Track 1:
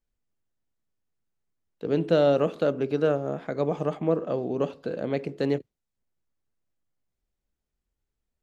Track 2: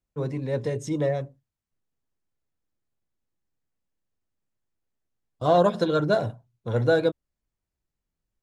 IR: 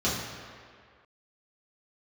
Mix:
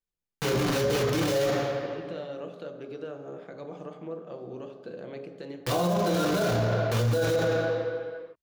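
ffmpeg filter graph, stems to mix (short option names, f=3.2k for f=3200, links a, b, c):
-filter_complex "[0:a]alimiter=limit=-20dB:level=0:latency=1:release=246,volume=-8dB,asplit=2[a][b];[b]volume=-16.5dB[c];[1:a]acrusher=bits=4:mix=0:aa=0.000001,adelay=250,volume=1.5dB,asplit=2[d][e];[e]volume=-6.5dB[f];[2:a]atrim=start_sample=2205[g];[c][f]amix=inputs=2:normalize=0[h];[h][g]afir=irnorm=-1:irlink=0[i];[a][d][i]amix=inputs=3:normalize=0,lowshelf=f=270:g=-6.5,alimiter=limit=-18dB:level=0:latency=1:release=11"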